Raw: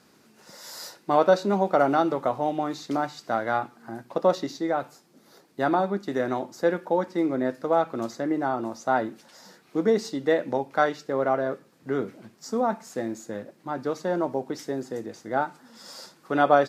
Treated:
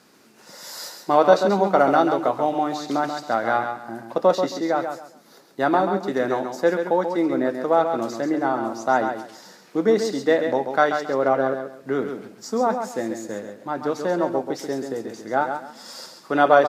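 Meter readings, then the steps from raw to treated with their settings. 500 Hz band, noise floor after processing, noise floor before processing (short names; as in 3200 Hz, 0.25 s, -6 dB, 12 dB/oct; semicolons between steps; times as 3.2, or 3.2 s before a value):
+4.5 dB, -51 dBFS, -59 dBFS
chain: HPF 180 Hz 6 dB/oct; on a send: feedback echo 0.135 s, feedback 25%, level -7 dB; on the sum: gain +4 dB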